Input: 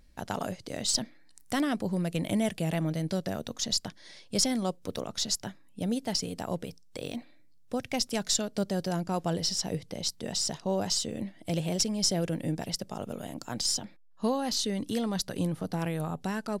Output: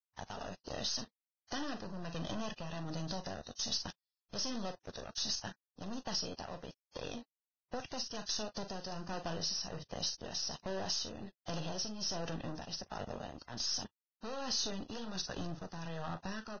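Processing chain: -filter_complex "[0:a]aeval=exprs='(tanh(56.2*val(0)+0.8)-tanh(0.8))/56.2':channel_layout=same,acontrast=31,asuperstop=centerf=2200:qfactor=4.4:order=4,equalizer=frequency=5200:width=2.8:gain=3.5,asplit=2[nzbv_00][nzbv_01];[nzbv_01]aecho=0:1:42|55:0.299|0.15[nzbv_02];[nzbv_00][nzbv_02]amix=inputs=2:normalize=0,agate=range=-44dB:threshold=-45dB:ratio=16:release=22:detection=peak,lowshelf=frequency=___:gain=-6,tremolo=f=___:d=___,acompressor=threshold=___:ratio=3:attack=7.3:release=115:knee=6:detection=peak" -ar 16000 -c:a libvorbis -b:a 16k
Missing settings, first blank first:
420, 1.3, 0.56, -36dB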